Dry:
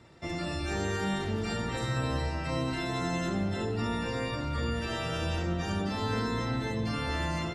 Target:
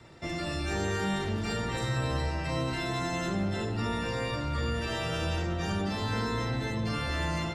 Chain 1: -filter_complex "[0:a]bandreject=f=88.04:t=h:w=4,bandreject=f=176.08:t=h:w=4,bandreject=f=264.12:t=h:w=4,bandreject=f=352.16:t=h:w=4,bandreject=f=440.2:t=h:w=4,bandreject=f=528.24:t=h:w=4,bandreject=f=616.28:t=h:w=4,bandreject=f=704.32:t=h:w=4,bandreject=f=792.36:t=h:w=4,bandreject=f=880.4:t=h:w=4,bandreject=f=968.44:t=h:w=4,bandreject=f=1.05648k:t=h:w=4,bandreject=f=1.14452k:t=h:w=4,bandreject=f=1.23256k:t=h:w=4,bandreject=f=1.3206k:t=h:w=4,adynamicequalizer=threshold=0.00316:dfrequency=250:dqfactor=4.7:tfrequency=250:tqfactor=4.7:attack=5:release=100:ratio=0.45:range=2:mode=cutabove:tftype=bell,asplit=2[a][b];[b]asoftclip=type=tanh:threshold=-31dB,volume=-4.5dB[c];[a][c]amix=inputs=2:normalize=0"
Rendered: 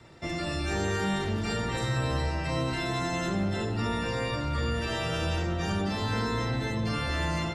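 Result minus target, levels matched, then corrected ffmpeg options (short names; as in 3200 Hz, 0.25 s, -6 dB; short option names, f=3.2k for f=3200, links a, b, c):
soft clip: distortion -7 dB
-filter_complex "[0:a]bandreject=f=88.04:t=h:w=4,bandreject=f=176.08:t=h:w=4,bandreject=f=264.12:t=h:w=4,bandreject=f=352.16:t=h:w=4,bandreject=f=440.2:t=h:w=4,bandreject=f=528.24:t=h:w=4,bandreject=f=616.28:t=h:w=4,bandreject=f=704.32:t=h:w=4,bandreject=f=792.36:t=h:w=4,bandreject=f=880.4:t=h:w=4,bandreject=f=968.44:t=h:w=4,bandreject=f=1.05648k:t=h:w=4,bandreject=f=1.14452k:t=h:w=4,bandreject=f=1.23256k:t=h:w=4,bandreject=f=1.3206k:t=h:w=4,adynamicequalizer=threshold=0.00316:dfrequency=250:dqfactor=4.7:tfrequency=250:tqfactor=4.7:attack=5:release=100:ratio=0.45:range=2:mode=cutabove:tftype=bell,asplit=2[a][b];[b]asoftclip=type=tanh:threshold=-41.5dB,volume=-4.5dB[c];[a][c]amix=inputs=2:normalize=0"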